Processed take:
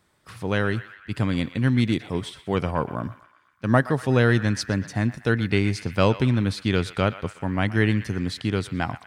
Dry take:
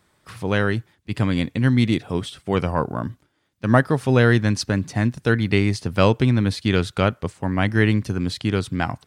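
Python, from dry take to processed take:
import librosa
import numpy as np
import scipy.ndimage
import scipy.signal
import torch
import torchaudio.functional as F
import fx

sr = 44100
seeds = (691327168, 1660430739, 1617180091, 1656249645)

y = fx.echo_banded(x, sr, ms=121, feedback_pct=68, hz=1900.0, wet_db=-13)
y = y * librosa.db_to_amplitude(-3.0)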